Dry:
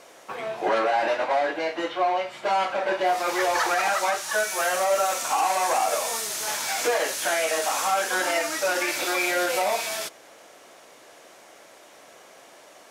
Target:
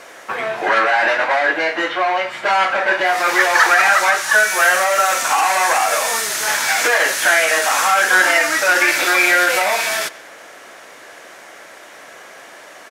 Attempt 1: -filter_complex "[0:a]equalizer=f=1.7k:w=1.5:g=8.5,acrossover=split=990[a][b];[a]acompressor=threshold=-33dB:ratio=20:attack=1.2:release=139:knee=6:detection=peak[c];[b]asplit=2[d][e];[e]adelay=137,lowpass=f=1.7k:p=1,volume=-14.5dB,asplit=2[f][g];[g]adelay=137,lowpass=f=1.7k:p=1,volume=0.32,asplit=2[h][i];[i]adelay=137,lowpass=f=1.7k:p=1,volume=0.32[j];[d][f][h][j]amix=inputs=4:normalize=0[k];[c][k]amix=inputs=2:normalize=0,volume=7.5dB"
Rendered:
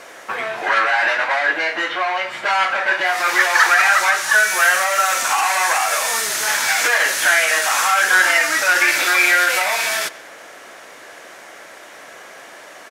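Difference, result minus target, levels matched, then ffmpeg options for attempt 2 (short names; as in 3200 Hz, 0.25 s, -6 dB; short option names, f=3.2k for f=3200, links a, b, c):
compressor: peak gain reduction +8.5 dB
-filter_complex "[0:a]equalizer=f=1.7k:w=1.5:g=8.5,acrossover=split=990[a][b];[a]acompressor=threshold=-24dB:ratio=20:attack=1.2:release=139:knee=6:detection=peak[c];[b]asplit=2[d][e];[e]adelay=137,lowpass=f=1.7k:p=1,volume=-14.5dB,asplit=2[f][g];[g]adelay=137,lowpass=f=1.7k:p=1,volume=0.32,asplit=2[h][i];[i]adelay=137,lowpass=f=1.7k:p=1,volume=0.32[j];[d][f][h][j]amix=inputs=4:normalize=0[k];[c][k]amix=inputs=2:normalize=0,volume=7.5dB"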